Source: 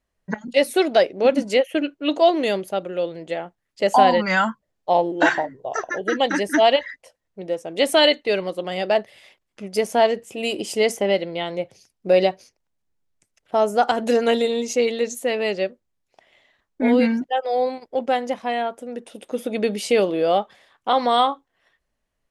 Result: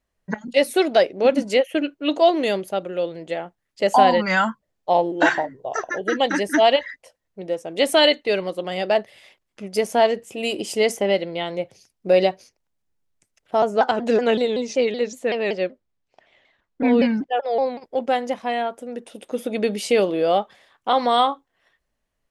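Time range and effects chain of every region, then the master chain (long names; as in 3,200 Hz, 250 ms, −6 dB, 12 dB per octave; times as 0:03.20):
0:13.62–0:17.84: high-frequency loss of the air 82 metres + pitch modulation by a square or saw wave saw down 5.3 Hz, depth 160 cents
whole clip: no processing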